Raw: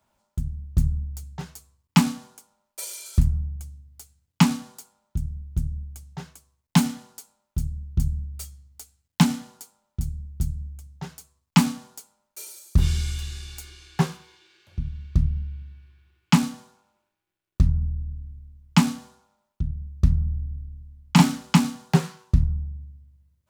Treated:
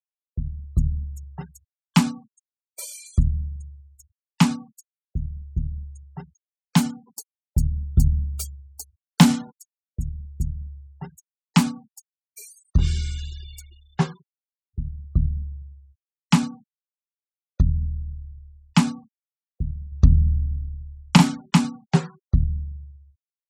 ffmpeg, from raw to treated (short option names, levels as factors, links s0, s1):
-filter_complex "[0:a]asettb=1/sr,asplit=3[s0][s1][s2];[s0]atrim=end=7.074[s3];[s1]atrim=start=7.07:end=9.51,asetpts=PTS-STARTPTS,afade=t=in:d=0.004:c=qsin,afade=t=out:st=2.436:d=0.004:c=qsin,acontrast=66[s4];[s2]atrim=start=9.506[s5];[s3][s4]acrossfade=d=0.004:c1=hsin:c2=qsin[s6];[s6][s5]acrossfade=d=0.004:c1=qsin:c2=hsin,asettb=1/sr,asplit=3[s7][s8][s9];[s7]atrim=end=19.924[s10];[s8]atrim=start=19.92:end=21.17,asetpts=PTS-STARTPTS,afade=t=in:d=0.004:c=qsin,afade=t=out:st=1.246:d=0.004:c=qsin,acontrast=58[s11];[s9]atrim=start=21.166[s12];[s10][s11]acrossfade=d=0.004:c1=hsin:c2=qsin[s13];[s13][s12]acrossfade=d=0.004:c1=qsin:c2=hsin,agate=range=0.0794:threshold=0.00224:ratio=16:detection=peak,afftfilt=real='re*gte(hypot(re,im),0.0141)':imag='im*gte(hypot(re,im),0.0141)':win_size=1024:overlap=0.75"